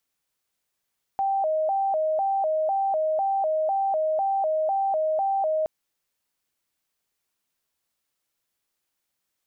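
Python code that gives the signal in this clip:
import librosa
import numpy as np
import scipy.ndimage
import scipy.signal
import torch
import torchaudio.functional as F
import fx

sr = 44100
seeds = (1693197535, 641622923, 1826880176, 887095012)

y = fx.siren(sr, length_s=4.47, kind='hi-lo', low_hz=626.0, high_hz=783.0, per_s=2.0, wave='sine', level_db=-21.0)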